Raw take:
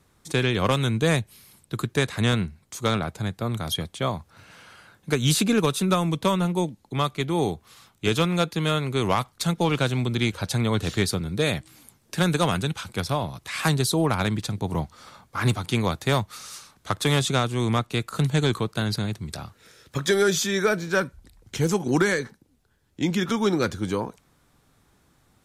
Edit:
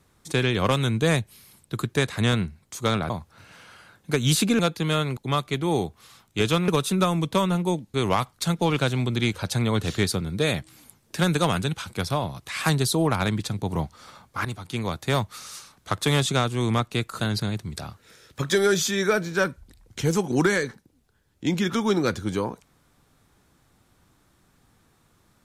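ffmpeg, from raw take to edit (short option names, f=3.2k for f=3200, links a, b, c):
-filter_complex "[0:a]asplit=8[a][b][c][d][e][f][g][h];[a]atrim=end=3.102[i];[b]atrim=start=4.088:end=5.582[j];[c]atrim=start=8.348:end=8.932[k];[d]atrim=start=6.838:end=8.352[l];[e]atrim=start=5.578:end=6.842[m];[f]atrim=start=8.928:end=15.44,asetpts=PTS-STARTPTS,afade=t=out:st=6.508:d=0.004:c=hsin:silence=0.237137[n];[g]atrim=start=15.44:end=18.192,asetpts=PTS-STARTPTS,afade=t=in:d=0.82:silence=0.237137[o];[h]atrim=start=18.758[p];[i][j]acrossfade=d=0.004:c1=hsin:c2=hsin[q];[q][k]acrossfade=d=0.004:c1=hsin:c2=hsin[r];[r][l]acrossfade=d=0.004:c1=hsin:c2=hsin[s];[s][m]acrossfade=d=0.004:c1=hsin:c2=hsin[t];[n][o]concat=n=2:v=0:a=1[u];[t][u]acrossfade=d=0.004:c1=hsin:c2=hsin[v];[v][p]acrossfade=d=0.004:c1=hsin:c2=hsin"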